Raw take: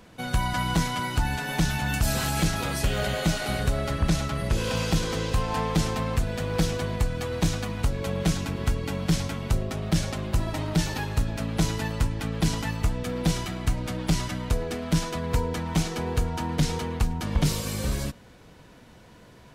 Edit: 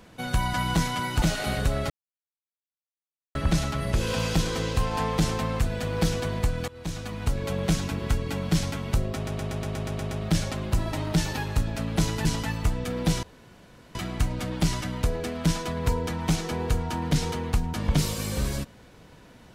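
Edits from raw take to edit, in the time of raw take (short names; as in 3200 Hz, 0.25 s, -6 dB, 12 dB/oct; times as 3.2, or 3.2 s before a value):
1.22–3.24 cut
3.92 insert silence 1.45 s
7.25–7.94 fade in, from -20 dB
9.72 stutter 0.12 s, 9 plays
11.86–12.44 cut
13.42 insert room tone 0.72 s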